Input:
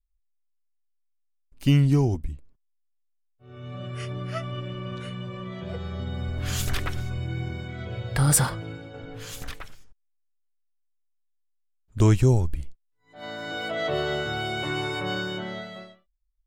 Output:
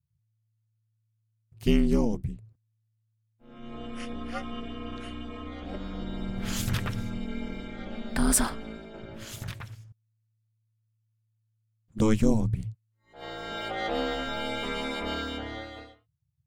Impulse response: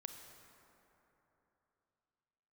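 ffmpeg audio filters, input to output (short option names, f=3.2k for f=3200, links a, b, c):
-af "aeval=exprs='val(0)*sin(2*PI*110*n/s)':c=same"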